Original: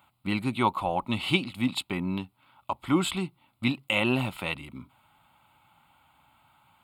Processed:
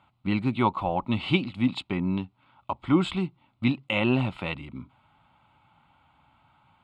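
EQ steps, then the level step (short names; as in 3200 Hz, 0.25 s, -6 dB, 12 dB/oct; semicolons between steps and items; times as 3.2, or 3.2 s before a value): air absorption 130 m; low shelf 390 Hz +4.5 dB; 0.0 dB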